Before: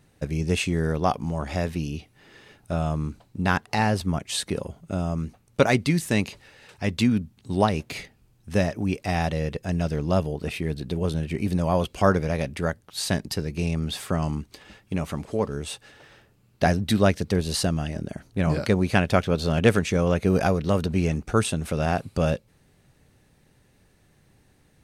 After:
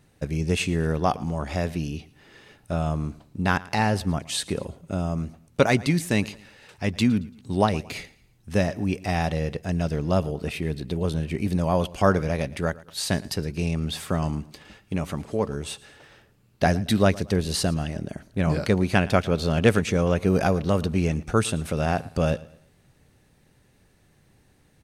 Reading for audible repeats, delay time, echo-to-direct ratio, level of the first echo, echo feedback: 2, 0.113 s, -20.0 dB, -20.5 dB, 36%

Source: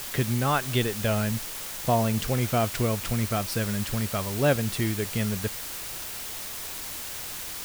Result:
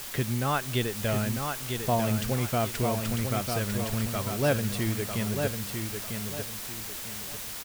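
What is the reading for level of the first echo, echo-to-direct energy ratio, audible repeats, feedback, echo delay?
-5.5 dB, -5.0 dB, 3, 32%, 0.948 s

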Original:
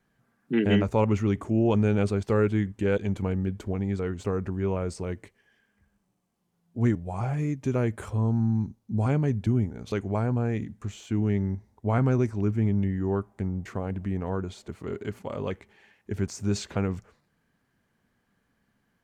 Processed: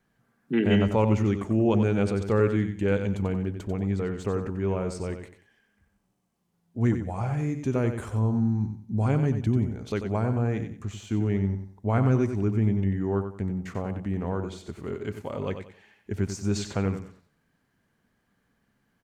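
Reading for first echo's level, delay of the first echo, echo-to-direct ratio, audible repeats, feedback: -8.5 dB, 92 ms, -8.0 dB, 3, 28%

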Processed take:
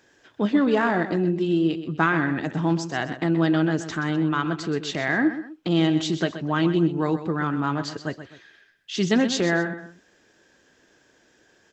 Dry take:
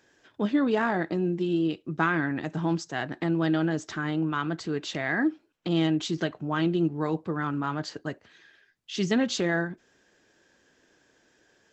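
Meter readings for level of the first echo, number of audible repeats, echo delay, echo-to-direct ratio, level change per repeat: -11.5 dB, 2, 0.127 s, -11.0 dB, -9.0 dB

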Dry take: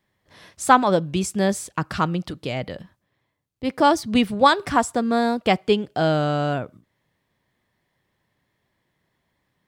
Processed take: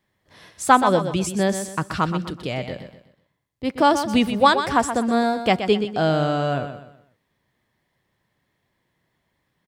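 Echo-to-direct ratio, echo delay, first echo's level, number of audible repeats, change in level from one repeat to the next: -9.0 dB, 0.125 s, -9.5 dB, 3, -9.0 dB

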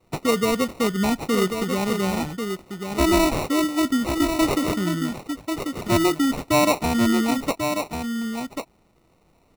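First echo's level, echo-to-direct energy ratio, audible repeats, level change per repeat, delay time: -6.5 dB, -6.5 dB, 1, no steady repeat, 1.091 s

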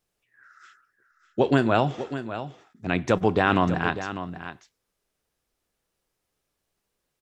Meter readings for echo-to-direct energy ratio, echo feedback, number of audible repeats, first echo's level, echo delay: -11.5 dB, no steady repeat, 1, -11.5 dB, 0.598 s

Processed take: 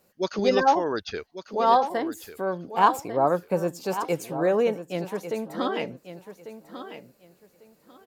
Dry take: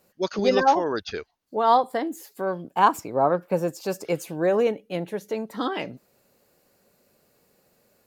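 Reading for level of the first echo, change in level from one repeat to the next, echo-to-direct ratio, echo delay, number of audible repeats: -11.5 dB, -13.5 dB, -11.5 dB, 1.146 s, 2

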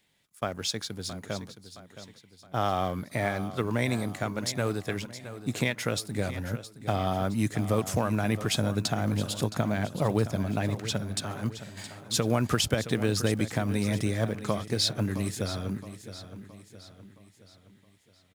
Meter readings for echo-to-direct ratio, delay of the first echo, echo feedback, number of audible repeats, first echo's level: -12.0 dB, 0.668 s, 47%, 4, -13.0 dB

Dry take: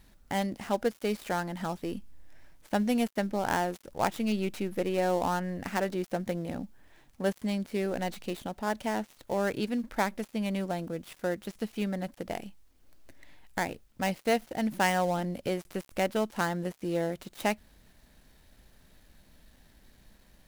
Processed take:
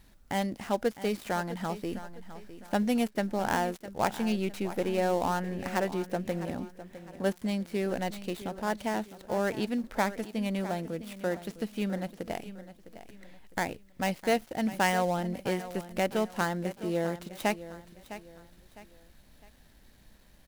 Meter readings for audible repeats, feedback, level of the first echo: 3, 36%, -14.0 dB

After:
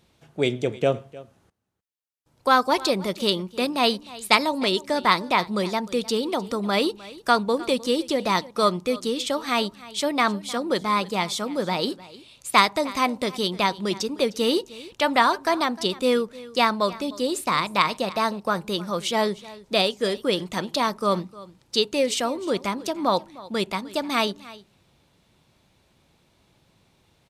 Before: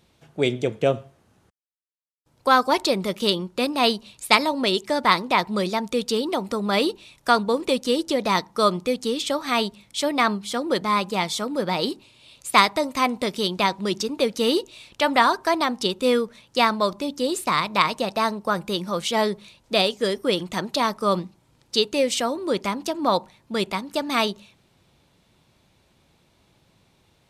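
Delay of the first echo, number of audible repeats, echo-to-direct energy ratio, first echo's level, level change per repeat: 0.306 s, 1, -19.5 dB, -19.5 dB, no steady repeat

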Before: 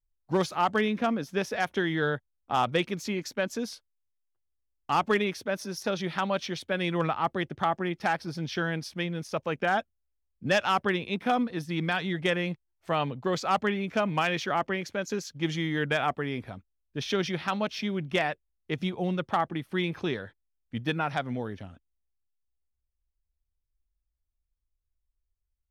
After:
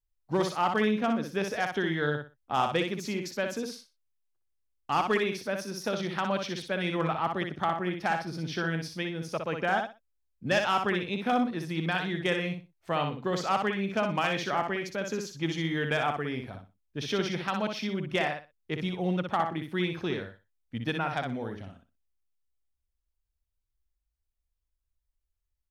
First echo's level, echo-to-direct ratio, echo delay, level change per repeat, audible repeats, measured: -5.5 dB, -5.5 dB, 61 ms, -13.0 dB, 3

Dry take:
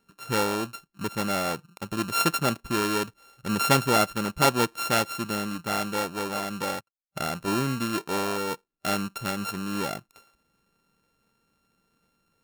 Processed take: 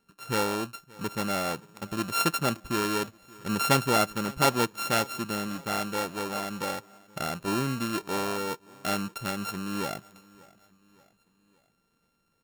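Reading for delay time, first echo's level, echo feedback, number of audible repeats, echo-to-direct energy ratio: 0.576 s, -23.5 dB, 50%, 2, -22.5 dB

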